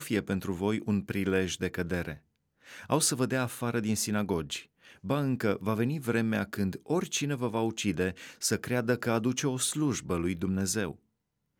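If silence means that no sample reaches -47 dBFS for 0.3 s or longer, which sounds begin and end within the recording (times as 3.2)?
2.66–10.95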